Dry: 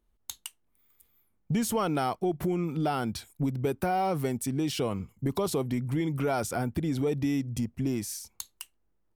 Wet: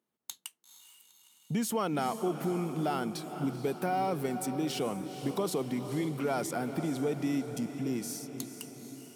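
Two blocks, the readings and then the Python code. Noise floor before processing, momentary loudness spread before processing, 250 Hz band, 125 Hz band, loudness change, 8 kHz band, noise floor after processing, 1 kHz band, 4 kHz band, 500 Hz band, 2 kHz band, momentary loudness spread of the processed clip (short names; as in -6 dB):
-72 dBFS, 13 LU, -2.5 dB, -6.5 dB, -3.0 dB, -2.5 dB, -70 dBFS, -2.5 dB, -2.5 dB, -2.5 dB, -2.5 dB, 10 LU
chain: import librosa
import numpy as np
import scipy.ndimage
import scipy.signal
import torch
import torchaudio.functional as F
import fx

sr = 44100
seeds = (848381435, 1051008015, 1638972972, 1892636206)

y = scipy.signal.sosfilt(scipy.signal.butter(4, 150.0, 'highpass', fs=sr, output='sos'), x)
y = fx.echo_diffused(y, sr, ms=466, feedback_pct=61, wet_db=-10.0)
y = y * 10.0 ** (-3.0 / 20.0)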